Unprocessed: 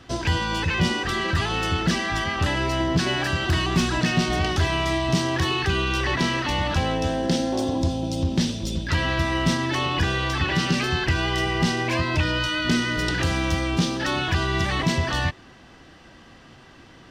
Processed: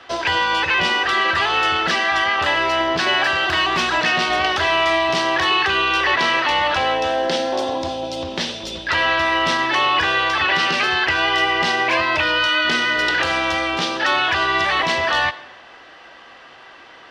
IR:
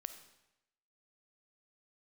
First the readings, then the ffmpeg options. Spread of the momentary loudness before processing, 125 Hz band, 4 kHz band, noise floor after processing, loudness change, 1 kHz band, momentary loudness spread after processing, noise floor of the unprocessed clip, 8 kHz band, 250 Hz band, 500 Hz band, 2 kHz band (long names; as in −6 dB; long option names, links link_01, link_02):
2 LU, −13.0 dB, +7.0 dB, −43 dBFS, +5.5 dB, +9.0 dB, 5 LU, −49 dBFS, −0.5 dB, −4.5 dB, +5.0 dB, +9.0 dB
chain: -filter_complex "[0:a]acrossover=split=460 4500:gain=0.0708 1 0.251[link_01][link_02][link_03];[link_01][link_02][link_03]amix=inputs=3:normalize=0,asplit=2[link_04][link_05];[1:a]atrim=start_sample=2205,highshelf=frequency=9300:gain=-11.5[link_06];[link_05][link_06]afir=irnorm=-1:irlink=0,volume=3.5dB[link_07];[link_04][link_07]amix=inputs=2:normalize=0,volume=3.5dB"